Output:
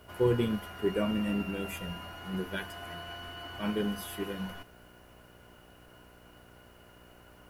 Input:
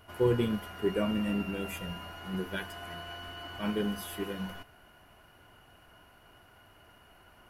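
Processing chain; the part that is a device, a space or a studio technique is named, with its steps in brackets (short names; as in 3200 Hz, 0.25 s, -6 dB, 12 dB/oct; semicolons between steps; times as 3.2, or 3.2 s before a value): video cassette with head-switching buzz (buzz 60 Hz, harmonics 10, -59 dBFS -2 dB/oct; white noise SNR 36 dB)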